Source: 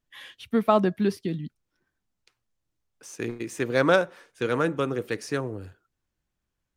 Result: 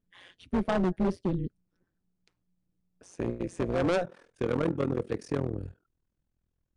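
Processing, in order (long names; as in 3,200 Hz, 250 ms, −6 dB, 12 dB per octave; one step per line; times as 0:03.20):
tilt shelving filter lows +7 dB, about 720 Hz
amplitude modulation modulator 180 Hz, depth 85%, from 0:04.03 modulator 41 Hz
gain into a clipping stage and back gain 21.5 dB
downsampling to 22,050 Hz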